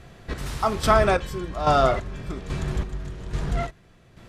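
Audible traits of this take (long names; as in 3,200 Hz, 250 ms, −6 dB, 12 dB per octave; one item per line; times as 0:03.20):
chopped level 1.2 Hz, depth 60%, duty 40%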